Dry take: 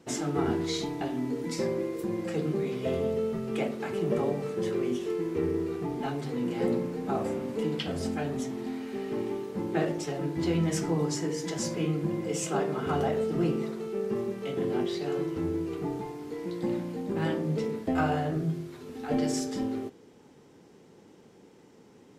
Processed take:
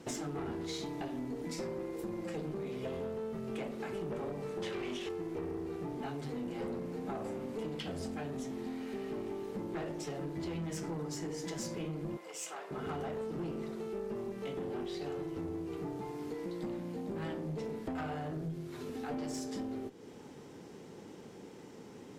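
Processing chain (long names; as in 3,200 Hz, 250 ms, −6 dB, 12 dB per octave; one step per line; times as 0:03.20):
tube saturation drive 25 dB, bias 0.4
0:04.62–0:05.09: parametric band 2,800 Hz +13 dB 2.3 octaves
downward compressor 4 to 1, threshold −45 dBFS, peak gain reduction 14.5 dB
0:12.17–0:12.71: high-pass filter 730 Hz 12 dB per octave
level +6 dB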